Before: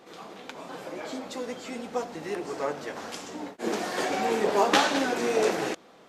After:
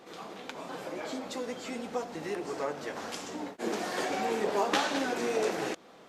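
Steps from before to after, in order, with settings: compression 1.5:1, threshold -35 dBFS, peak gain reduction 7 dB

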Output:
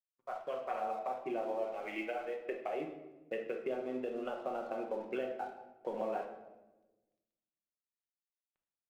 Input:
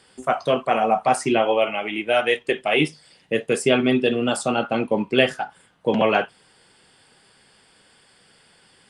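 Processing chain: fade-in on the opening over 1.38 s; high-pass 450 Hz 12 dB/octave; low-pass that closes with the level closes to 750 Hz, closed at -20 dBFS; treble shelf 4.8 kHz +9.5 dB; level-controlled noise filter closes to 770 Hz, open at -16 dBFS; compression 3:1, threshold -34 dBFS, peak gain reduction 12.5 dB; crossover distortion -55.5 dBFS; simulated room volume 530 m³, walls mixed, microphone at 0.96 m; trim -4.5 dB

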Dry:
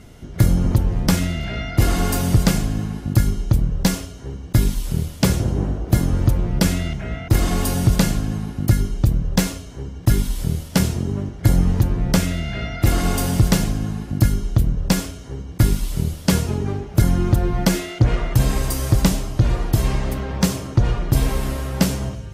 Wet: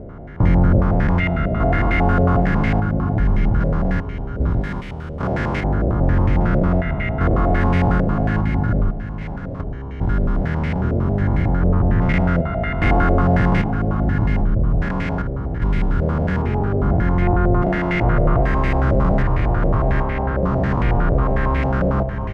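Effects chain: spectrogram pixelated in time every 400 ms; 4.61–5.64 s: tilt EQ +2 dB/octave; 8.90–9.60 s: level held to a coarse grid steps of 17 dB; delay 823 ms -12.5 dB; step-sequenced low-pass 11 Hz 580–2100 Hz; trim +4 dB

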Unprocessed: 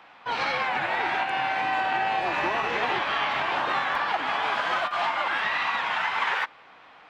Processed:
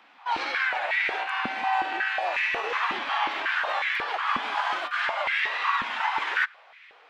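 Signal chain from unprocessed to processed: tilt shelf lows -5 dB; step-sequenced high-pass 5.5 Hz 240–2100 Hz; trim -6.5 dB

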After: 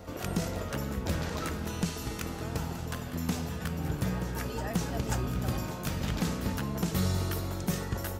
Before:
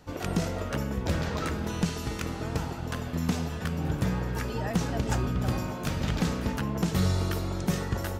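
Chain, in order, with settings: treble shelf 9.6 kHz +11 dB; on a send: reverse echo 536 ms -11.5 dB; on the sum: trim -3.5 dB

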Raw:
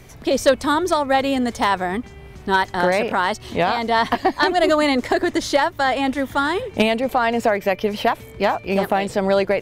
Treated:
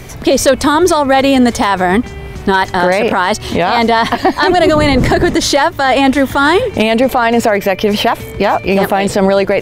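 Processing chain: 4.48–5.34 s: wind noise 220 Hz -17 dBFS; loudness maximiser +14.5 dB; trim -1 dB

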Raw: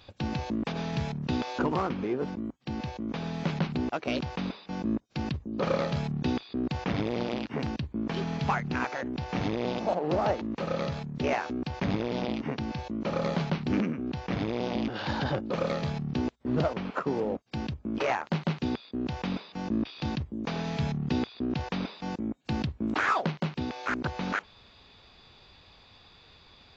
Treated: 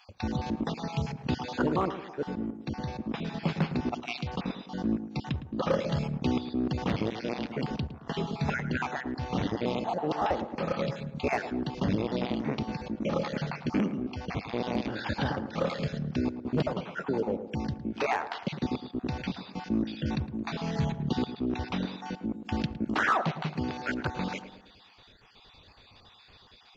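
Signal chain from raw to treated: random holes in the spectrogram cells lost 32%; hard clipper -19 dBFS, distortion -31 dB; tape echo 108 ms, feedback 56%, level -8.5 dB, low-pass 1.2 kHz; trim +1 dB

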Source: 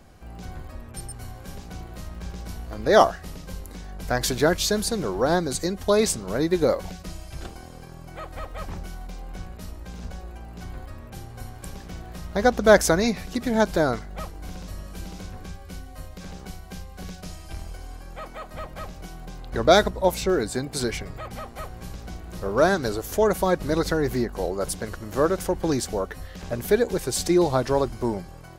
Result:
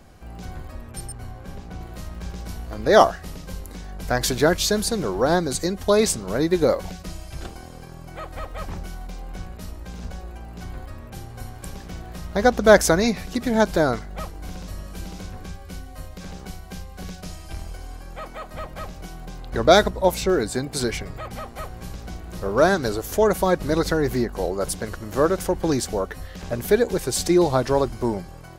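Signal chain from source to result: 1.12–1.81 s: treble shelf 3.6 kHz -10.5 dB; trim +2 dB

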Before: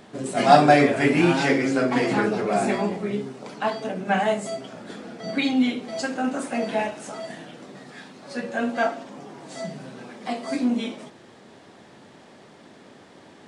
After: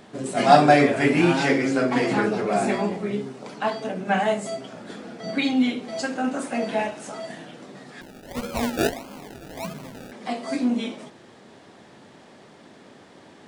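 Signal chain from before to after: 8.01–10.12 s: decimation with a swept rate 33×, swing 60% 1.6 Hz

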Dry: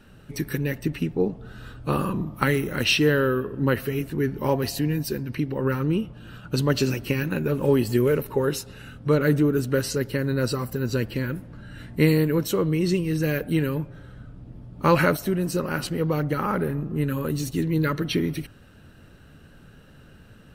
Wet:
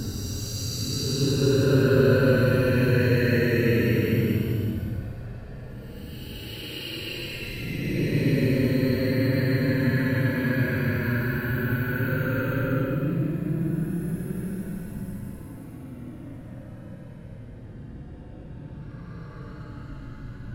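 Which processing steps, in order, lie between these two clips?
wow and flutter 25 cents; Paulstretch 30×, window 0.05 s, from 10.89 s; trim +2.5 dB

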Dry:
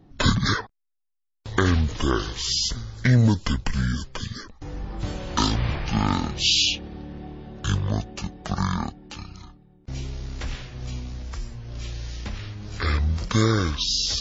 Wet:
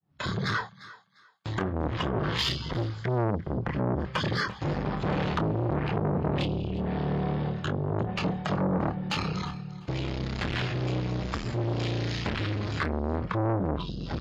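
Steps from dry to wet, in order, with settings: fade-in on the opening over 3.04 s; high-pass 71 Hz 12 dB/octave; band-stop 5.8 kHz, Q 7.7; low-pass that closes with the level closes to 340 Hz, closed at -20 dBFS; resonant low shelf 210 Hz +7.5 dB, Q 3; reverse; compression 8:1, threshold -23 dBFS, peak gain reduction 18 dB; reverse; overdrive pedal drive 19 dB, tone 2.3 kHz, clips at -15.5 dBFS; doubling 26 ms -7 dB; on a send: thinning echo 349 ms, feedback 26%, high-pass 390 Hz, level -18.5 dB; on the sum: transformer saturation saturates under 770 Hz; trim +3.5 dB

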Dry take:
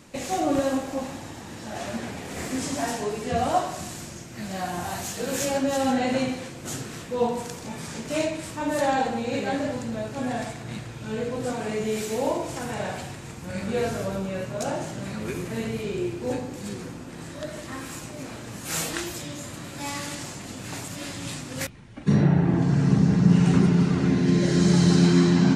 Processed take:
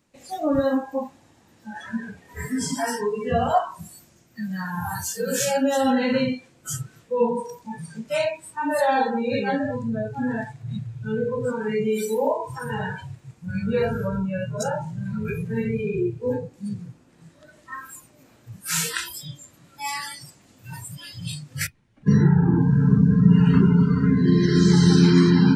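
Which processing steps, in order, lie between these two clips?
spectral noise reduction 24 dB; in parallel at -2 dB: compression, threshold -30 dBFS, peak gain reduction 16.5 dB; on the sum: trim +1.5 dB

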